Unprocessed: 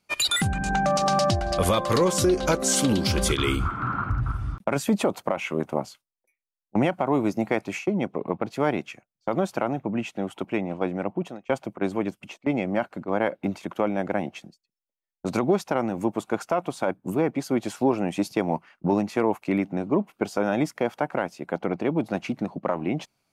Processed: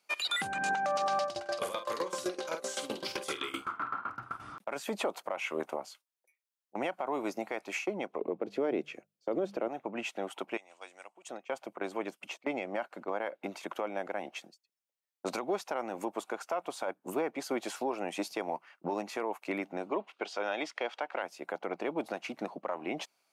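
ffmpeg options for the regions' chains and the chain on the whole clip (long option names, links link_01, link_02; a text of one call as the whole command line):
ffmpeg -i in.wav -filter_complex "[0:a]asettb=1/sr,asplit=3[link_01][link_02][link_03];[link_01]atrim=end=1.234[link_04];[link_02]atrim=start=1.23:end=4.4,asetpts=PTS-STARTPTS,afade=type=in:duration=0.004:curve=qsin,afade=type=out:start_time=3.166:duration=0.004:curve=qsin,asplit=2[link_05][link_06];[link_06]adelay=48,volume=-4dB[link_07];[link_05][link_07]amix=inputs=2:normalize=0,atrim=end_sample=139797,aeval=exprs='val(0)*pow(10,-20*if(lt(mod(7.8*n/s,1),2*abs(7.8)/1000),1-mod(7.8*n/s,1)/(2*abs(7.8)/1000),(mod(7.8*n/s,1)-2*abs(7.8)/1000)/(1-2*abs(7.8)/1000))/20)':channel_layout=same[link_08];[link_03]atrim=start=4.396[link_09];[link_04][link_08]acrossfade=duration=0.004:curve1=hsin:curve2=qsin[link_10];[link_10][link_09]acrossfade=duration=0.004:curve1=qsin:curve2=hsin,asettb=1/sr,asplit=3[link_11][link_12][link_13];[link_11]atrim=end=8.214[link_14];[link_12]atrim=start=8.21:end=9.68,asetpts=PTS-STARTPTS,afade=type=in:duration=0.004:curve=qsin,afade=type=out:start_time=1.466:duration=0.004:curve=qsin,bandreject=frequency=50:width_type=h:width=6,bandreject=frequency=100:width_type=h:width=6,bandreject=frequency=150:width_type=h:width=6,bandreject=frequency=200:width_type=h:width=6,acrossover=split=4800[link_15][link_16];[link_16]acompressor=threshold=-60dB:ratio=4:attack=1:release=60[link_17];[link_15][link_17]amix=inputs=2:normalize=0,lowshelf=frequency=610:width_type=q:width=1.5:gain=11[link_18];[link_13]atrim=start=9.676[link_19];[link_14][link_18]acrossfade=duration=0.004:curve1=hsin:curve2=qsin[link_20];[link_20][link_19]acrossfade=duration=0.004:curve1=qsin:curve2=hsin,asettb=1/sr,asplit=3[link_21][link_22][link_23];[link_21]atrim=end=10.574[link_24];[link_22]atrim=start=10.57:end=11.29,asetpts=PTS-STARTPTS,afade=type=in:duration=0.004:curve=qsin,afade=type=out:start_time=0.716:duration=0.004:curve=qsin,lowpass=frequency=7900:width_type=q:width=2.6,aderivative[link_25];[link_23]atrim=start=11.286[link_26];[link_24][link_25]acrossfade=duration=0.004:curve1=hsin:curve2=qsin[link_27];[link_27][link_26]acrossfade=duration=0.004:curve1=qsin:curve2=hsin,asettb=1/sr,asplit=3[link_28][link_29][link_30];[link_28]atrim=end=19.914[link_31];[link_29]atrim=start=19.91:end=21.23,asetpts=PTS-STARTPTS,afade=type=in:duration=0.004:curve=qsin,afade=type=out:start_time=1.316:duration=0.004:curve=qsin,highpass=260,lowpass=5700,equalizer=frequency=3300:width_type=o:width=1.3:gain=8.5[link_32];[link_30]atrim=start=21.226[link_33];[link_31][link_32]acrossfade=duration=0.004:curve1=hsin:curve2=qsin[link_34];[link_34][link_33]acrossfade=duration=0.004:curve1=qsin:curve2=hsin,acrossover=split=4200[link_35][link_36];[link_36]acompressor=threshold=-39dB:ratio=4:attack=1:release=60[link_37];[link_35][link_37]amix=inputs=2:normalize=0,highpass=470,alimiter=limit=-22.5dB:level=0:latency=1:release=277" out.wav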